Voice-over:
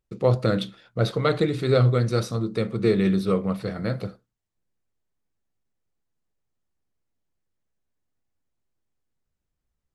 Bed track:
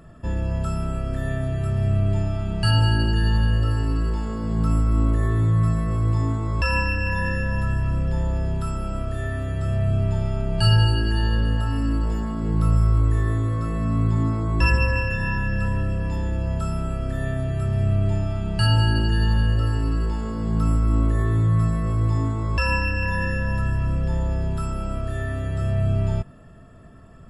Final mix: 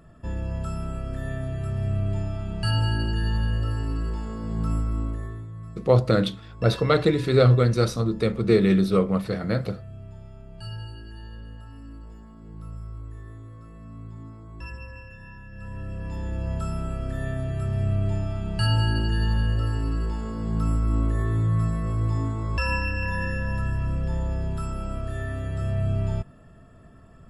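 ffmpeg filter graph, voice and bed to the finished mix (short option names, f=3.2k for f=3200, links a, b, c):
-filter_complex "[0:a]adelay=5650,volume=2dB[a];[1:a]volume=11dB,afade=t=out:st=4.74:d=0.73:silence=0.188365,afade=t=in:st=15.51:d=1:silence=0.158489[b];[a][b]amix=inputs=2:normalize=0"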